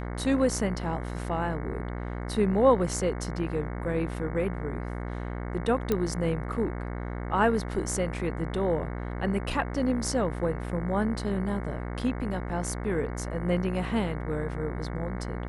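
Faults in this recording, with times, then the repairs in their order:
buzz 60 Hz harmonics 37 -34 dBFS
5.92 s: pop -13 dBFS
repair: de-click; de-hum 60 Hz, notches 37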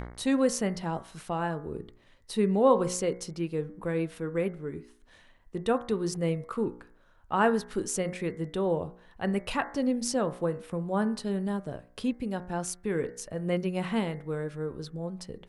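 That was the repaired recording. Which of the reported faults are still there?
nothing left

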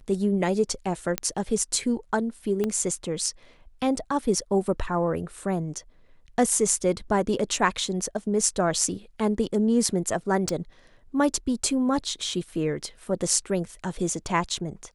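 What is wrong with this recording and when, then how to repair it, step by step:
1.18 s: pop -7 dBFS
2.64 s: pop -14 dBFS
10.49 s: pop -14 dBFS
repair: de-click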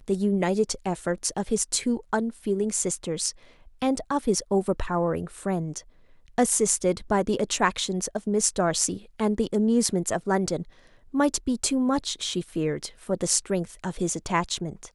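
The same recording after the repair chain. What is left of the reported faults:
2.64 s: pop
10.49 s: pop

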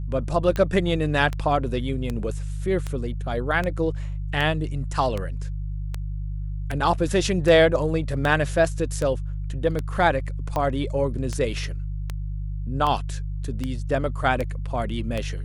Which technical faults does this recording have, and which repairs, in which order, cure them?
hum 50 Hz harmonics 3 -29 dBFS
tick 78 rpm -14 dBFS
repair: de-click; de-hum 50 Hz, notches 3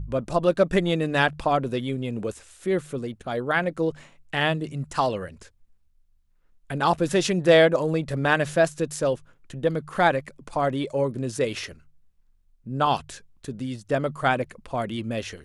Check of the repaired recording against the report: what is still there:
nothing left

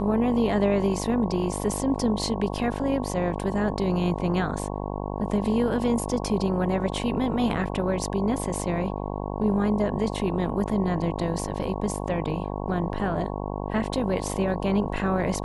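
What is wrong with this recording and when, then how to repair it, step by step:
buzz 50 Hz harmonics 22 -31 dBFS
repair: de-hum 50 Hz, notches 22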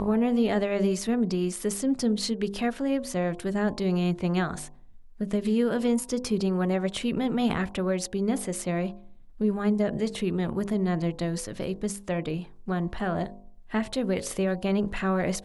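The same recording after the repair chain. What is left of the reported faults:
nothing left

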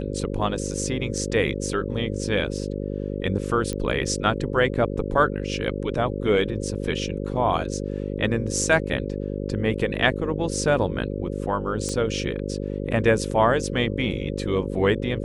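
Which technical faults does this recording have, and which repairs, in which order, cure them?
buzz 50 Hz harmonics 11 -29 dBFS
3.73 s: pop -15 dBFS
11.89 s: pop -16 dBFS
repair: de-click; de-hum 50 Hz, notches 11

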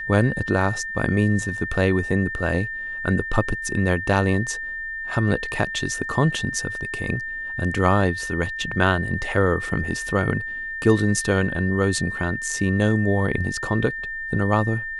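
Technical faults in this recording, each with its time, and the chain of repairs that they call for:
whine 1.8 kHz -28 dBFS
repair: band-stop 1.8 kHz, Q 30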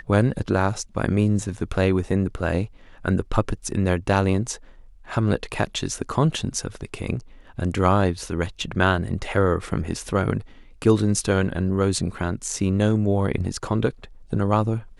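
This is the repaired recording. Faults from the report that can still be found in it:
nothing left

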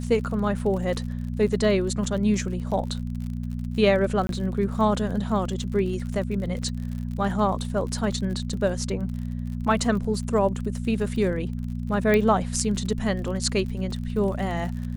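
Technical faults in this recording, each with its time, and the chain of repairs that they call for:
crackle 45 per s -33 dBFS
hum 60 Hz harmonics 4 -30 dBFS
4.27–4.29 s: dropout 22 ms
6.62 s: dropout 3.9 ms
12.14 s: pop -10 dBFS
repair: de-click; de-hum 60 Hz, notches 4; interpolate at 4.27 s, 22 ms; interpolate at 6.62 s, 3.9 ms

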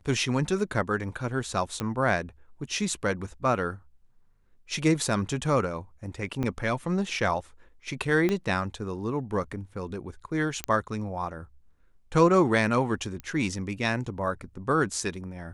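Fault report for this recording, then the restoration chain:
1.80 s: pop -16 dBFS
6.43–6.44 s: dropout 6.8 ms
8.29 s: pop -14 dBFS
10.64 s: pop -12 dBFS
13.20 s: pop -23 dBFS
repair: de-click; interpolate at 6.43 s, 6.8 ms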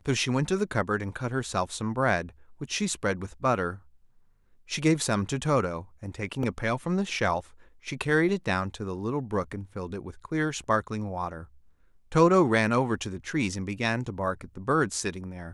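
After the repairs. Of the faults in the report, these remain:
8.29 s: pop

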